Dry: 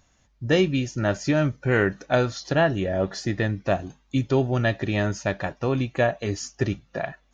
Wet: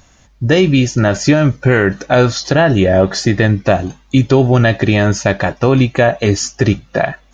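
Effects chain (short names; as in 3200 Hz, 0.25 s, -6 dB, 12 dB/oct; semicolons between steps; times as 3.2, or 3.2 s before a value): maximiser +15.5 dB; gain -1 dB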